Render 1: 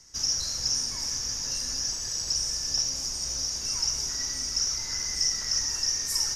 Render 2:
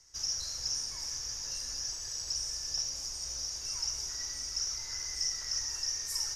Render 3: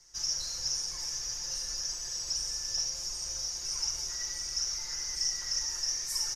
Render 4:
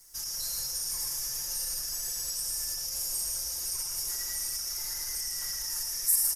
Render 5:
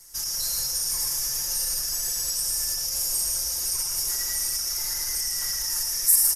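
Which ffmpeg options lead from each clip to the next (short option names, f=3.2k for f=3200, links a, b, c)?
-af "equalizer=f=210:w=1.4:g=-10.5,volume=-7dB"
-af "aecho=1:1:5.7:0.77"
-af "alimiter=level_in=4dB:limit=-24dB:level=0:latency=1:release=31,volume=-4dB,aexciter=amount=11.3:drive=7.7:freq=8.7k,aecho=1:1:110.8|160.3:0.562|0.355"
-af "aresample=32000,aresample=44100,volume=6.5dB"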